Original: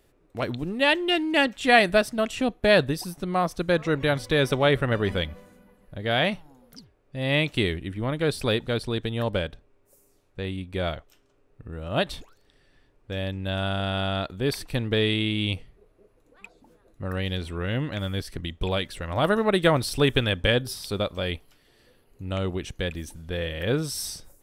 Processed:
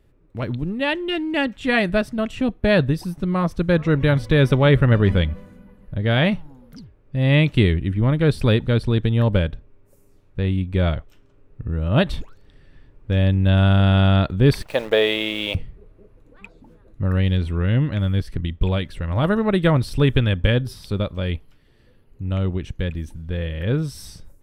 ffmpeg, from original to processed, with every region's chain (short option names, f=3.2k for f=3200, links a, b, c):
-filter_complex "[0:a]asettb=1/sr,asplit=3[a][b][c];[a]atrim=end=14.624[d];[b]atrim=start=14.62:end=15.55,asetpts=PTS-STARTPTS,afade=t=in:d=0.004:c=qsin,afade=t=out:st=0.926:d=0.004:c=qsin,highpass=f=600:t=q:w=3.3,acrusher=bits=8:dc=4:mix=0:aa=0.000001[e];[c]atrim=start=15.546[f];[d][e]acrossfade=d=0.004:c1=hsin:c2=qsin[g];[g][f]acrossfade=d=0.004:c1=qsin:c2=hsin,bass=f=250:g=10,treble=f=4k:g=-8,bandreject=f=720:w=12,dynaudnorm=f=940:g=7:m=11.5dB,volume=-1.5dB"